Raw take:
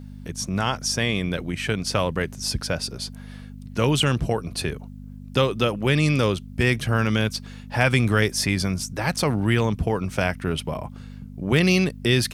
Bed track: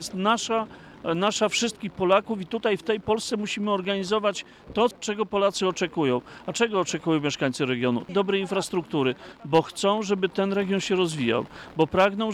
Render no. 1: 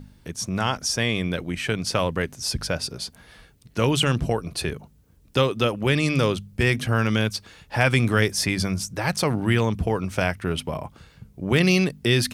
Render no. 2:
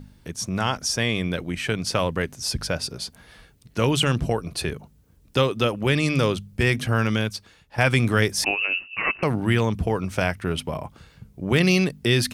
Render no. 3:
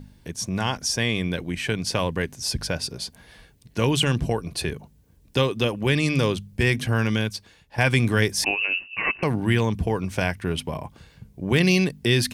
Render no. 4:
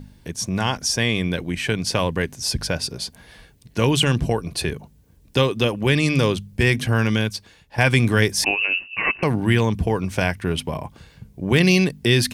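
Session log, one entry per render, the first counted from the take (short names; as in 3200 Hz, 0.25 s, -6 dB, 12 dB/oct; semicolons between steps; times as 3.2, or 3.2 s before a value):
de-hum 50 Hz, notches 5
7.04–7.78 fade out, to -13 dB; 8.44–9.23 inverted band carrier 2800 Hz
notch 1300 Hz, Q 6.4; dynamic EQ 610 Hz, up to -3 dB, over -40 dBFS, Q 2.7
gain +3 dB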